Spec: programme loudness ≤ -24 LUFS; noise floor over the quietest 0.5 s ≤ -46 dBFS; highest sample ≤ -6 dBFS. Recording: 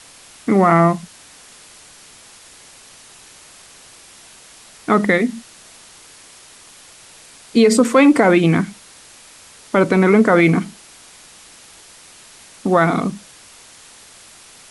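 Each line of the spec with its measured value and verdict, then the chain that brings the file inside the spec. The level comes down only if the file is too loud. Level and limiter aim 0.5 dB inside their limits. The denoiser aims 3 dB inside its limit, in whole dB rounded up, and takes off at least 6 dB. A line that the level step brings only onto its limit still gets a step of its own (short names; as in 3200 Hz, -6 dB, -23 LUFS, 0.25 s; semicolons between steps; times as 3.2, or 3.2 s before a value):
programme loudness -15.5 LUFS: fail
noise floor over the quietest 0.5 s -44 dBFS: fail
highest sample -3.0 dBFS: fail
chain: gain -9 dB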